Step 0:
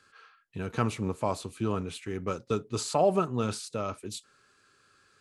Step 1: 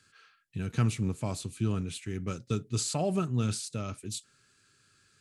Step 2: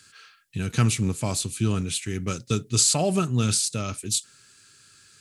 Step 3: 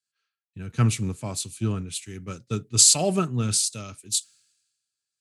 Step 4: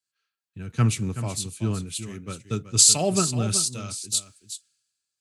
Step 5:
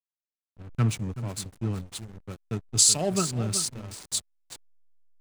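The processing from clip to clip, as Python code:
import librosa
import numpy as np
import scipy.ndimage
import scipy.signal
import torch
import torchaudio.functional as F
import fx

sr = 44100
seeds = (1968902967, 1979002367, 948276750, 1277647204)

y1 = fx.graphic_eq(x, sr, hz=(125, 500, 1000, 8000), db=(6, -7, -10, 4))
y2 = fx.high_shelf(y1, sr, hz=2700.0, db=9.5)
y2 = F.gain(torch.from_numpy(y2), 5.5).numpy()
y3 = fx.band_widen(y2, sr, depth_pct=100)
y3 = F.gain(torch.from_numpy(y3), -4.0).numpy()
y4 = y3 + 10.0 ** (-11.5 / 20.0) * np.pad(y3, (int(376 * sr / 1000.0), 0))[:len(y3)]
y5 = fx.backlash(y4, sr, play_db=-27.5)
y5 = F.gain(torch.from_numpy(y5), -3.0).numpy()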